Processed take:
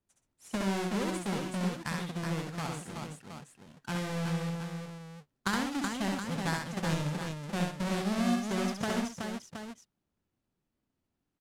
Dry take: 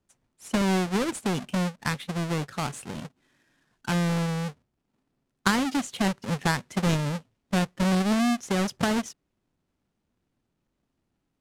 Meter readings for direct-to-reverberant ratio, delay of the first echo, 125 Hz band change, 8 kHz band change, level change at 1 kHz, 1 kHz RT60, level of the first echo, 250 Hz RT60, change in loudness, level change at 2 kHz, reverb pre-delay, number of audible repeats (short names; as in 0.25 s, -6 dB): none, 67 ms, -6.0 dB, -6.0 dB, -6.0 dB, none, -3.0 dB, none, -6.5 dB, -6.0 dB, none, 4